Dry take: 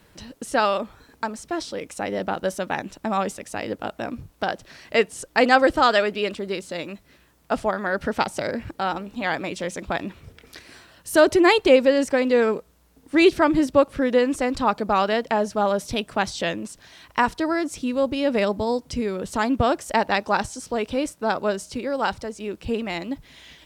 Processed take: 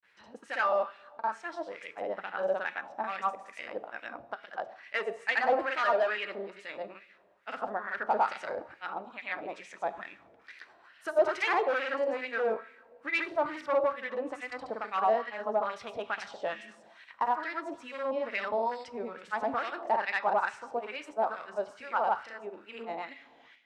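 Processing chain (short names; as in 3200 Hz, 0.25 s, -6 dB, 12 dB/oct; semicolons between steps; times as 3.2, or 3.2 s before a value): grains 0.122 s, pitch spread up and down by 0 st; two-slope reverb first 0.88 s, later 2.9 s, from -18 dB, DRR 10.5 dB; hard clip -17.5 dBFS, distortion -11 dB; LFO band-pass sine 2.3 Hz 670–2200 Hz; gain +1.5 dB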